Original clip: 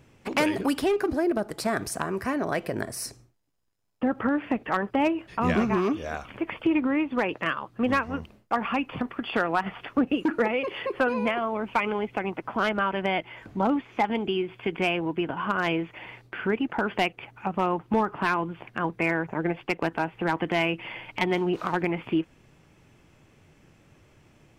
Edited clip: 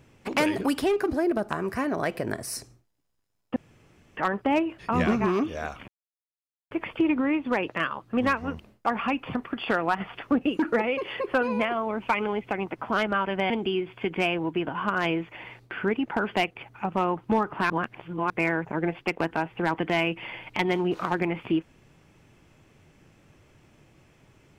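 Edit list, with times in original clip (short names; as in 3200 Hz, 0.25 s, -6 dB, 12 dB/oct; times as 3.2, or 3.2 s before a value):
1.49–1.98 cut
4.05–4.66 room tone
6.37 insert silence 0.83 s
13.16–14.12 cut
18.32–18.92 reverse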